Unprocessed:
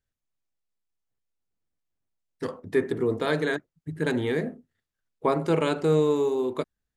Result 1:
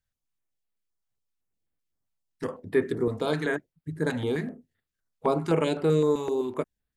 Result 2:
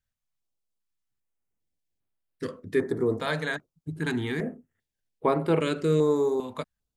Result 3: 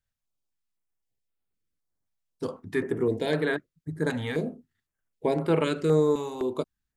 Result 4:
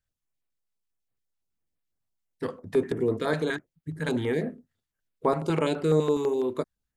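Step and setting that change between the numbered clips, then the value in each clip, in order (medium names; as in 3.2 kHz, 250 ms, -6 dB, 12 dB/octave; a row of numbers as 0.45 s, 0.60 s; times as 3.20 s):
step-sequenced notch, rate: 7.8 Hz, 2.5 Hz, 3.9 Hz, 12 Hz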